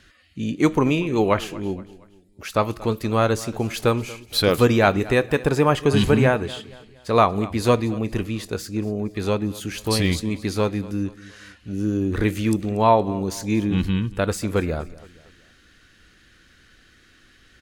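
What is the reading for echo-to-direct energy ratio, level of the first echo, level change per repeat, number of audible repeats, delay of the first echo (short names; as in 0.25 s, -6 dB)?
-18.5 dB, -19.5 dB, -7.5 dB, 3, 0.234 s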